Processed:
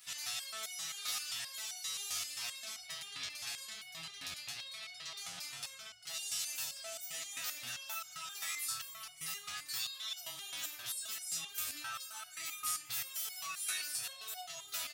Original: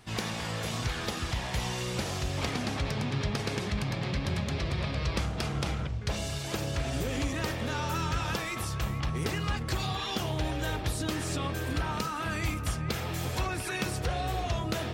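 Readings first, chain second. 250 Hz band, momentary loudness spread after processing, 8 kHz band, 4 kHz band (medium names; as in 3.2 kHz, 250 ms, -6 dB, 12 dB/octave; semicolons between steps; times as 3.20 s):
-33.0 dB, 7 LU, +2.0 dB, -3.5 dB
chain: amplifier tone stack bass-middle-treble 5-5-5; comb 7.2 ms, depth 45%; on a send: delay 397 ms -17 dB; on the sum: saturation -29.5 dBFS, distortion -27 dB; small resonant body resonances 680/1300 Hz, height 11 dB, ringing for 55 ms; peak limiter -38 dBFS, peak gain reduction 8 dB; tilt EQ +4.5 dB/octave; resonator arpeggio 7.6 Hz 89–730 Hz; trim +10.5 dB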